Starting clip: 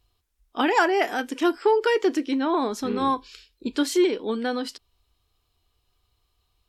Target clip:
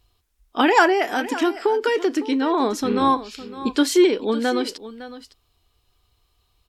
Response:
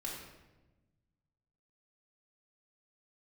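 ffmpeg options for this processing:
-filter_complex "[0:a]asettb=1/sr,asplit=3[a][b][c];[a]atrim=end=0.924[d];[b]atrim=start=0.92:end=2.6,asetpts=PTS-STARTPTS,afade=t=in:d=0.004:c=qsin,afade=t=out:st=1.676:d=0.004:c=qsin,acompressor=threshold=-23dB:ratio=3[e];[c]atrim=start=2.596[f];[d][e]acrossfade=d=0.004:c1=hsin:c2=qsin[g];[g][f]acrossfade=d=0.004:c1=qsin:c2=hsin,asplit=2[h][i];[i]aecho=0:1:558:0.178[j];[h][j]amix=inputs=2:normalize=0,volume=5dB"

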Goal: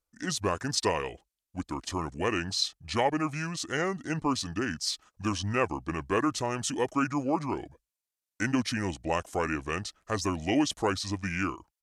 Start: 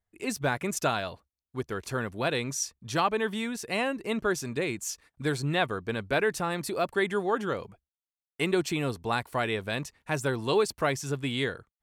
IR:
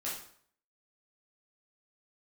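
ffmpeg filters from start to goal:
-af "asetrate=31183,aresample=44100,atempo=1.41421,bass=f=250:g=-3,treble=f=4k:g=6"

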